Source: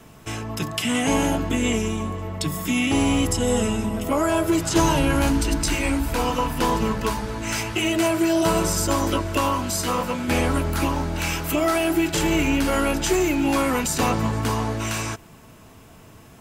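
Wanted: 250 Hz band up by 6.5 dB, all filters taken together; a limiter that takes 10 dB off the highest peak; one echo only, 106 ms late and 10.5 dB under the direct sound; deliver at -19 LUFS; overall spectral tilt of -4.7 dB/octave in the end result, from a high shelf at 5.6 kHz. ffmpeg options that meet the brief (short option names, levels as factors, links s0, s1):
-af "equalizer=f=250:t=o:g=8,highshelf=f=5600:g=4,alimiter=limit=0.211:level=0:latency=1,aecho=1:1:106:0.299,volume=1.41"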